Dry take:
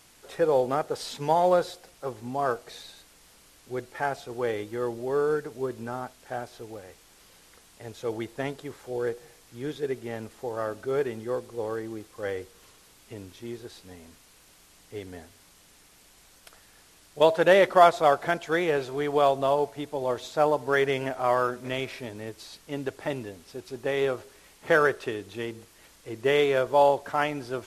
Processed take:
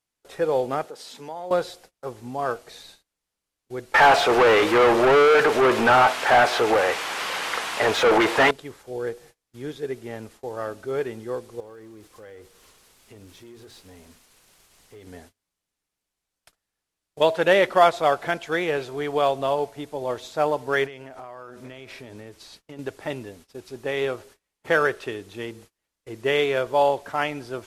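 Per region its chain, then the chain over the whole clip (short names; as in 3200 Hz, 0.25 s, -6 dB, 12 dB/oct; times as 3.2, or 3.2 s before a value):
0.85–1.51 HPF 170 Hz 24 dB/oct + compressor 2:1, threshold -41 dBFS
3.94–8.51 overdrive pedal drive 33 dB, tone 2800 Hz, clips at -14.5 dBFS + bell 1000 Hz +8.5 dB 2.3 oct
11.6–15.07 G.711 law mismatch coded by mu + notches 60/120/180/240/300 Hz + compressor 3:1, threshold -45 dBFS
20.86–22.79 high shelf 9000 Hz -5 dB + compressor 16:1, threshold -35 dBFS
whole clip: gate -48 dBFS, range -28 dB; dynamic EQ 2700 Hz, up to +4 dB, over -39 dBFS, Q 1.1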